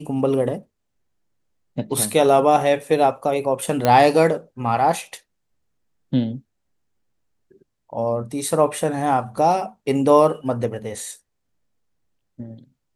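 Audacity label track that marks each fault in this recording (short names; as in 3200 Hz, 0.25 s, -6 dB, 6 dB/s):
3.850000	3.850000	pop -5 dBFS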